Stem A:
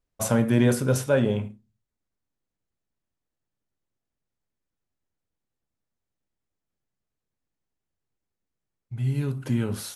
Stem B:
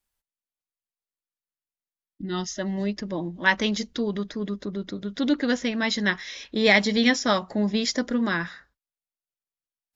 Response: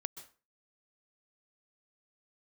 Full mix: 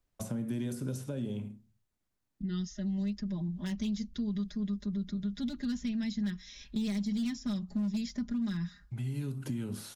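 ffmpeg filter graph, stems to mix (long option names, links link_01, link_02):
-filter_complex "[0:a]acompressor=threshold=-32dB:ratio=2.5,volume=2dB[link_01];[1:a]asubboost=boost=9:cutoff=140,asoftclip=type=hard:threshold=-15dB,aecho=1:1:4.9:0.87,adelay=200,volume=-9dB[link_02];[link_01][link_02]amix=inputs=2:normalize=0,equalizer=frequency=470:width=4.2:gain=-4,acrossover=split=140|370|3600[link_03][link_04][link_05][link_06];[link_03]acompressor=threshold=-47dB:ratio=4[link_07];[link_04]acompressor=threshold=-33dB:ratio=4[link_08];[link_05]acompressor=threshold=-54dB:ratio=4[link_09];[link_06]acompressor=threshold=-49dB:ratio=4[link_10];[link_07][link_08][link_09][link_10]amix=inputs=4:normalize=0"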